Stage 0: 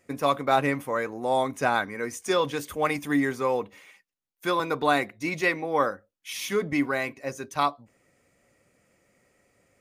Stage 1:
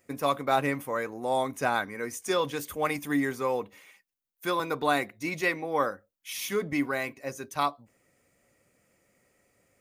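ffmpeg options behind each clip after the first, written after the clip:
-af "highshelf=f=12k:g=11.5,volume=-3dB"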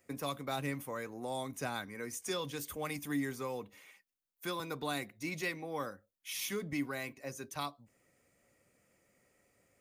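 -filter_complex "[0:a]acrossover=split=240|3000[a][b][c];[b]acompressor=threshold=-41dB:ratio=2[d];[a][d][c]amix=inputs=3:normalize=0,volume=-3.5dB"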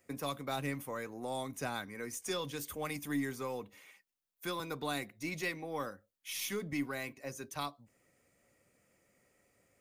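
-af "aeval=exprs='0.0708*(cos(1*acos(clip(val(0)/0.0708,-1,1)))-cos(1*PI/2))+0.00112*(cos(6*acos(clip(val(0)/0.0708,-1,1)))-cos(6*PI/2))':c=same"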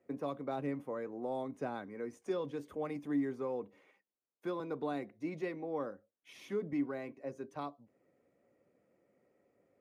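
-af "bandpass=f=390:t=q:w=0.91:csg=0,volume=3.5dB"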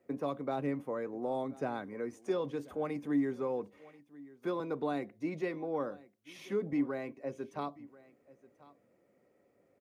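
-af "aecho=1:1:1036:0.0891,volume=3dB"

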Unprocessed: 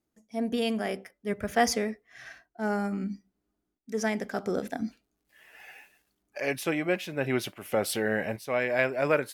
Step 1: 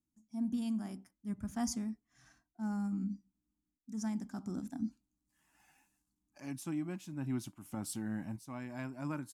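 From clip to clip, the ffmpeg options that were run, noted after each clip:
-af "firequalizer=gain_entry='entry(300,0);entry(440,-27);entry(920,-6);entry(1900,-21);entry(7200,-1);entry(15000,-13)':delay=0.05:min_phase=1,volume=-4dB"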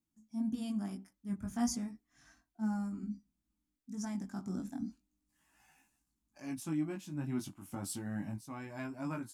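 -af "flanger=delay=18:depth=2.9:speed=0.33,volume=4dB"

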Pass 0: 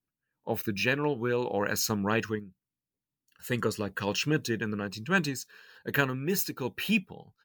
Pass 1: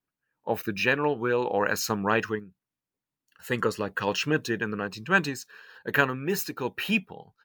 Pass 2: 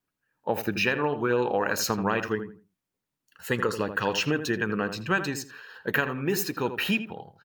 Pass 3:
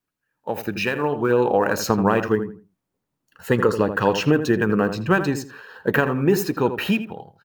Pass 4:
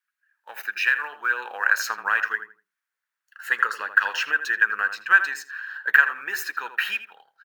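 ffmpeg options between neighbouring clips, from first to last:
-af "equalizer=f=1k:w=0.37:g=8.5,volume=-2.5dB"
-filter_complex "[0:a]acompressor=threshold=-25dB:ratio=6,asplit=2[a][b];[b]adelay=82,lowpass=f=1.7k:p=1,volume=-9dB,asplit=2[c][d];[d]adelay=82,lowpass=f=1.7k:p=1,volume=0.26,asplit=2[e][f];[f]adelay=82,lowpass=f=1.7k:p=1,volume=0.26[g];[c][e][g]amix=inputs=3:normalize=0[h];[a][h]amix=inputs=2:normalize=0,volume=3.5dB"
-filter_complex "[0:a]acrossover=split=1200[a][b];[a]dynaudnorm=f=480:g=5:m=10dB[c];[b]acrusher=bits=5:mode=log:mix=0:aa=0.000001[d];[c][d]amix=inputs=2:normalize=0"
-af "highpass=f=1.6k:t=q:w=4.4,volume=-3.5dB"

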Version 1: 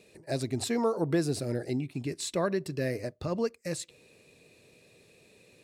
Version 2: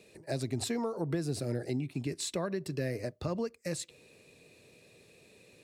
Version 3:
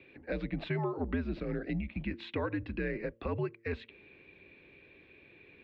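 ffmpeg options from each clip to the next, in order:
-filter_complex "[0:a]acrossover=split=150[a][b];[b]acompressor=threshold=-31dB:ratio=6[c];[a][c]amix=inputs=2:normalize=0"
-af "highshelf=f=2.2k:g=10.5,highpass=f=150:t=q:w=0.5412,highpass=f=150:t=q:w=1.307,lowpass=f=2.9k:t=q:w=0.5176,lowpass=f=2.9k:t=q:w=0.7071,lowpass=f=2.9k:t=q:w=1.932,afreqshift=-83,bandreject=f=114:t=h:w=4,bandreject=f=228:t=h:w=4,bandreject=f=342:t=h:w=4,bandreject=f=456:t=h:w=4,bandreject=f=570:t=h:w=4"

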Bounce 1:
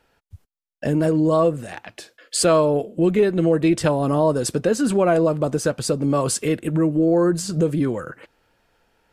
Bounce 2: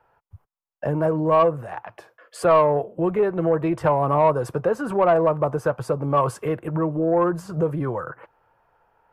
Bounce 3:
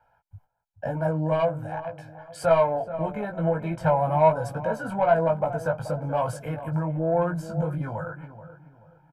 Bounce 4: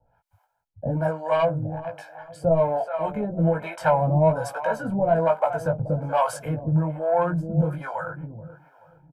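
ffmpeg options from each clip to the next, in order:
-filter_complex "[0:a]equalizer=f=125:t=o:w=1:g=8,equalizer=f=250:t=o:w=1:g=-9,equalizer=f=1k:t=o:w=1:g=10,equalizer=f=2k:t=o:w=1:g=-4,equalizer=f=4k:t=o:w=1:g=-10,equalizer=f=8k:t=o:w=1:g=-11,acrossover=split=270|2600[a][b][c];[b]acontrast=63[d];[a][d][c]amix=inputs=3:normalize=0,volume=-6.5dB"
-filter_complex "[0:a]flanger=delay=17.5:depth=2.1:speed=1.1,aecho=1:1:1.3:0.88,asplit=2[a][b];[b]adelay=430,lowpass=f=1.2k:p=1,volume=-12dB,asplit=2[c][d];[d]adelay=430,lowpass=f=1.2k:p=1,volume=0.35,asplit=2[e][f];[f]adelay=430,lowpass=f=1.2k:p=1,volume=0.35,asplit=2[g][h];[h]adelay=430,lowpass=f=1.2k:p=1,volume=0.35[i];[a][c][e][g][i]amix=inputs=5:normalize=0,volume=-2.5dB"
-filter_complex "[0:a]acrossover=split=550[a][b];[a]aeval=exprs='val(0)*(1-1/2+1/2*cos(2*PI*1.2*n/s))':c=same[c];[b]aeval=exprs='val(0)*(1-1/2-1/2*cos(2*PI*1.2*n/s))':c=same[d];[c][d]amix=inputs=2:normalize=0,volume=7.5dB"

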